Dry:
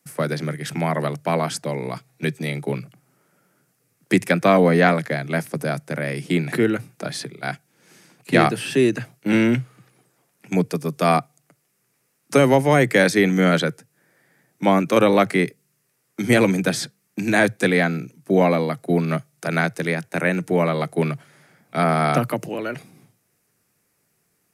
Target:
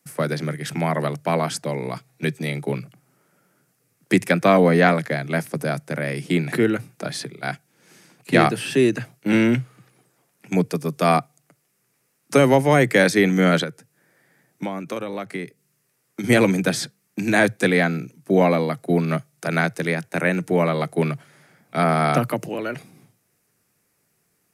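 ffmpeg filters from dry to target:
-filter_complex "[0:a]asettb=1/sr,asplit=3[a][b][c];[a]atrim=end=13.634[d];[b]atrim=start=13.63:end=16.24,asetpts=PTS-STARTPTS,afade=t=in:d=0.004:c=qsin,afade=t=out:st=2.606:d=0.004:c=qsin,acompressor=threshold=-25dB:ratio=16[e];[c]atrim=start=16.236[f];[d][e]acrossfade=d=0.004:c1=hsin:c2=qsin[g];[g][f]acrossfade=d=0.004:c1=qsin:c2=hsin"

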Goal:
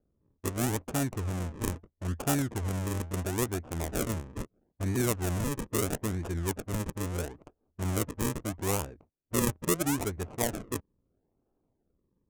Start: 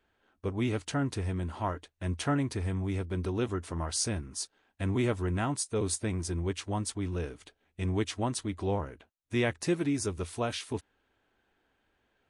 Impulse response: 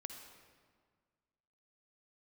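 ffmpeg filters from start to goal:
-af "acrusher=samples=42:mix=1:aa=0.000001:lfo=1:lforange=42:lforate=0.76,adynamicsmooth=sensitivity=7:basefreq=680,aexciter=amount=5.2:drive=6.3:freq=6.2k"

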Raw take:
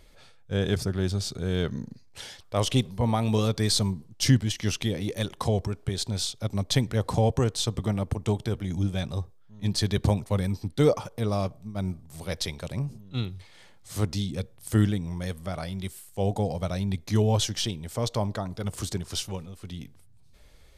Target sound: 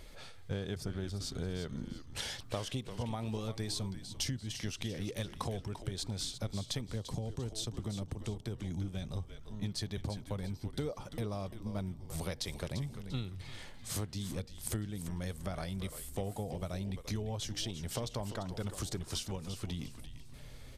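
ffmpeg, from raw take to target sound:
-filter_complex "[0:a]acompressor=threshold=-38dB:ratio=12,asplit=5[a][b][c][d][e];[b]adelay=344,afreqshift=-120,volume=-10dB[f];[c]adelay=688,afreqshift=-240,volume=-18.6dB[g];[d]adelay=1032,afreqshift=-360,volume=-27.3dB[h];[e]adelay=1376,afreqshift=-480,volume=-35.9dB[i];[a][f][g][h][i]amix=inputs=5:normalize=0,asettb=1/sr,asplit=3[j][k][l];[j]atrim=end=6.884[m];[k]atrim=start=6.88:end=9.16,asetpts=PTS-STARTPTS,afade=t=in:d=0.004:c=qsin,afade=t=out:st=2.276:d=0.004:c=qsin,acrossover=split=450|3000[n][o][p];[o]acompressor=threshold=-54dB:ratio=6[q];[n][q][p]amix=inputs=3:normalize=0[r];[l]atrim=start=9.156[s];[m][r]acrossfade=d=0.004:c1=hsin:c2=qsin[t];[t][s]acrossfade=d=0.004:c1=qsin:c2=hsin,volume=3.5dB"

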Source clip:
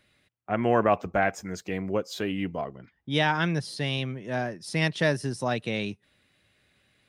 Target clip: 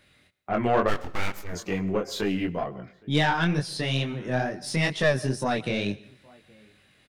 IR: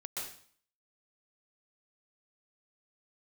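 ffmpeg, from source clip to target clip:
-filter_complex "[0:a]asplit=2[a][b];[b]acompressor=threshold=-36dB:ratio=6,volume=-1.5dB[c];[a][c]amix=inputs=2:normalize=0,asplit=2[d][e];[e]adelay=816.3,volume=-27dB,highshelf=f=4k:g=-18.4[f];[d][f]amix=inputs=2:normalize=0,asplit=3[g][h][i];[g]afade=t=out:st=0.87:d=0.02[j];[h]aeval=exprs='abs(val(0))':c=same,afade=t=in:st=0.87:d=0.02,afade=t=out:st=1.51:d=0.02[k];[i]afade=t=in:st=1.51:d=0.02[l];[j][k][l]amix=inputs=3:normalize=0,flanger=delay=20:depth=4.1:speed=2.2,aeval=exprs='0.398*(cos(1*acos(clip(val(0)/0.398,-1,1)))-cos(1*PI/2))+0.0316*(cos(5*acos(clip(val(0)/0.398,-1,1)))-cos(5*PI/2))+0.0251*(cos(8*acos(clip(val(0)/0.398,-1,1)))-cos(8*PI/2))':c=same,asplit=2[m][n];[1:a]atrim=start_sample=2205[o];[n][o]afir=irnorm=-1:irlink=0,volume=-18.5dB[p];[m][p]amix=inputs=2:normalize=0"

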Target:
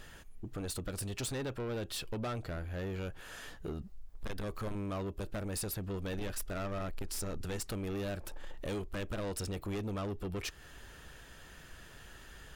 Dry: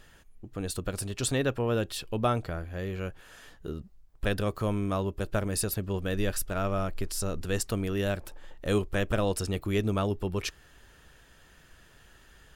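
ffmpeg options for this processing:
-filter_complex "[0:a]asettb=1/sr,asplit=3[a][b][c];[a]atrim=end=3.714[d];[b]atrim=start=3.71:end=4.75,asetpts=PTS-STARTPTS,afade=t=in:d=0.004:c=qsin,afade=t=out:st=1.036:d=0.004:c=qsin,asubboost=boost=11:cutoff=57[e];[c]atrim=start=4.746[f];[d][e]acrossfade=d=0.004:c1=hsin:c2=qsin[g];[g][f]acrossfade=d=0.004:c1=qsin:c2=hsin,acompressor=threshold=-38dB:ratio=2,asoftclip=type=tanh:threshold=-37.5dB,volume=4dB"

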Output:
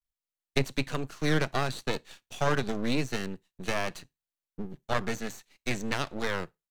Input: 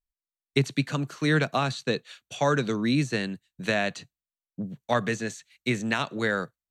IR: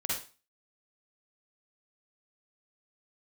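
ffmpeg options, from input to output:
-filter_complex "[0:a]aeval=exprs='max(val(0),0)':c=same,asplit=2[a][b];[1:a]atrim=start_sample=2205,asetrate=74970,aresample=44100[c];[b][c]afir=irnorm=-1:irlink=0,volume=-25dB[d];[a][d]amix=inputs=2:normalize=0"

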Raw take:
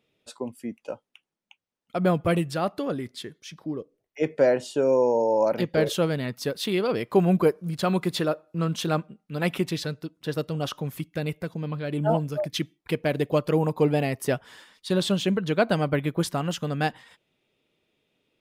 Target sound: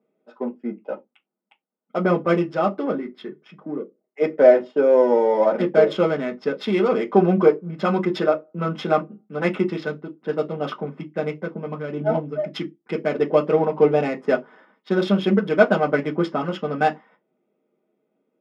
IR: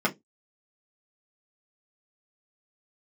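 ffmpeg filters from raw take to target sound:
-filter_complex "[0:a]asettb=1/sr,asplit=3[a][b][c];[a]atrim=end=11.824[d];[b]atrim=start=11.82:end=13.14,asetpts=PTS-STARTPTS,afade=t=in:d=0.004:c=qsin,afade=t=out:st=1.316:d=0.004:c=qsin,equalizer=f=970:w=0.54:g=-5[e];[c]atrim=start=13.136[f];[d][e]acrossfade=d=0.004:c1=hsin:c2=qsin[g];[g][f]acrossfade=d=0.004:c1=qsin:c2=hsin,adynamicsmooth=sensitivity=5.5:basefreq=1.1k,highpass=290,lowpass=7.7k[h];[1:a]atrim=start_sample=2205,afade=t=out:st=0.19:d=0.01,atrim=end_sample=8820[i];[h][i]afir=irnorm=-1:irlink=0,volume=-7.5dB"

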